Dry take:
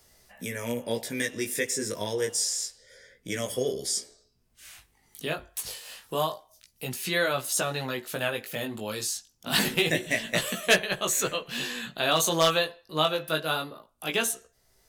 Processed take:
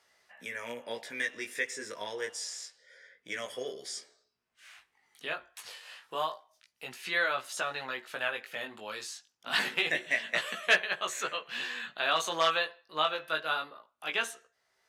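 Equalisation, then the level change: band-pass 1600 Hz, Q 0.87; 0.0 dB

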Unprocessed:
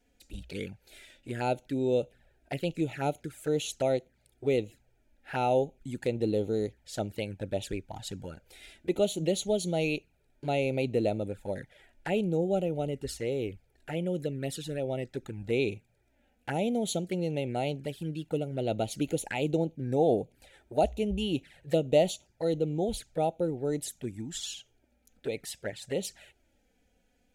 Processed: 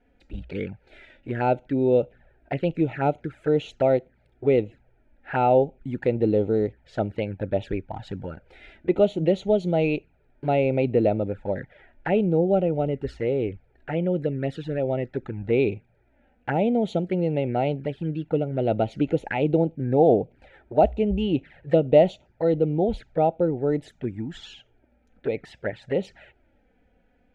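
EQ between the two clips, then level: Chebyshev low-pass 1700 Hz, order 2; +8.0 dB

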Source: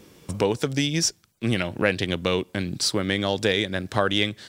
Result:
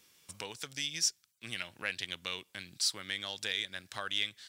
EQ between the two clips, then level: passive tone stack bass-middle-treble 5-5-5; low shelf 350 Hz -11.5 dB; 0.0 dB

